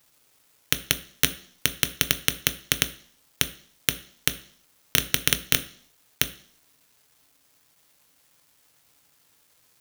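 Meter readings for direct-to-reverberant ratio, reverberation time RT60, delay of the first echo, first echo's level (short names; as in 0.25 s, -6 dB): 8.5 dB, 0.55 s, none, none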